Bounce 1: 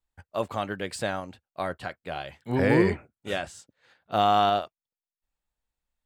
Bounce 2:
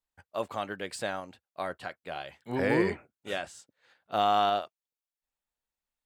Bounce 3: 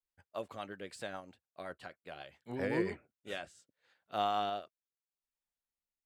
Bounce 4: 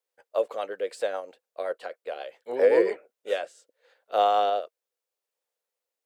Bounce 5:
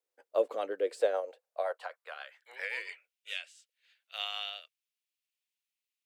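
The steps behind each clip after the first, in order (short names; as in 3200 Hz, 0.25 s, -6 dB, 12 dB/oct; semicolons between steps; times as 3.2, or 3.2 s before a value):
low shelf 160 Hz -10.5 dB; gain -3 dB
rotary speaker horn 7.5 Hz, later 0.75 Hz, at 2.71; gain -6 dB
resonant high-pass 490 Hz, resonance Q 4.9; gain +6 dB
high-pass sweep 270 Hz -> 2600 Hz, 0.7–2.84; gain -4.5 dB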